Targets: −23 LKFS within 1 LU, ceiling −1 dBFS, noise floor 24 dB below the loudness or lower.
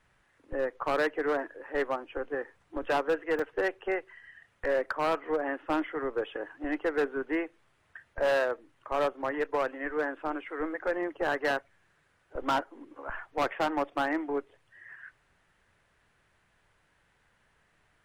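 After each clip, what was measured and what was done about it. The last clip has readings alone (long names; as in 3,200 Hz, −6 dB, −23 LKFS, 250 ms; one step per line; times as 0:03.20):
share of clipped samples 1.7%; peaks flattened at −22.0 dBFS; number of dropouts 1; longest dropout 4.1 ms; integrated loudness −31.5 LKFS; sample peak −22.0 dBFS; target loudness −23.0 LKFS
→ clipped peaks rebuilt −22 dBFS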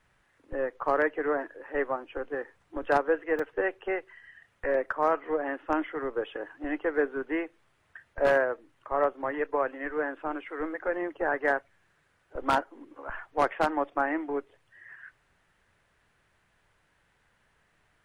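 share of clipped samples 0.0%; number of dropouts 1; longest dropout 4.1 ms
→ repair the gap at 0:03.39, 4.1 ms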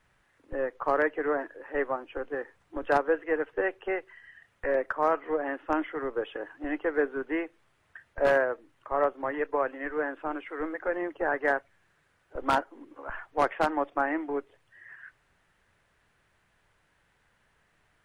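number of dropouts 0; integrated loudness −30.0 LKFS; sample peak −13.0 dBFS; target loudness −23.0 LKFS
→ level +7 dB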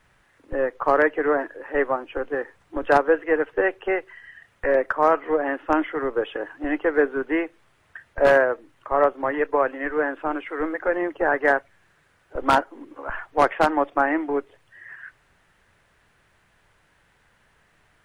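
integrated loudness −23.0 LKFS; sample peak −6.0 dBFS; background noise floor −63 dBFS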